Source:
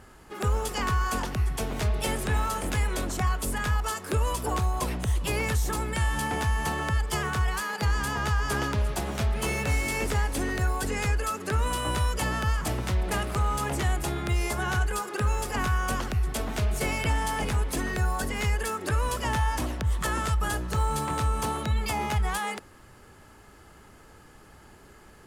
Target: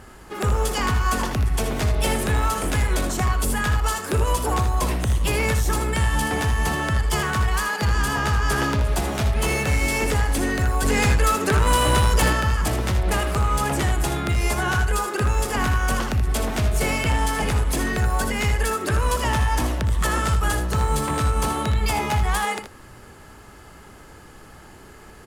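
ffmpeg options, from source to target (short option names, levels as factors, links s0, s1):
-filter_complex "[0:a]asettb=1/sr,asplit=3[s0][s1][s2];[s0]atrim=end=10.854[s3];[s1]atrim=start=10.85:end=12.33,asetpts=PTS-STARTPTS,afade=t=in:d=0.004:c=qsin,afade=t=out:st=1.476:d=0.004:c=qsin,acontrast=36[s4];[s2]atrim=start=12.326[s5];[s3][s4]acrossfade=d=0.004:c1=hsin:c2=qsin[s6];[s6][s5]acrossfade=d=0.004:c1=qsin:c2=hsin,asoftclip=type=tanh:threshold=0.0891,asplit=2[s7][s8];[s8]aecho=0:1:61|79:0.237|0.355[s9];[s7][s9]amix=inputs=2:normalize=0,volume=2.11"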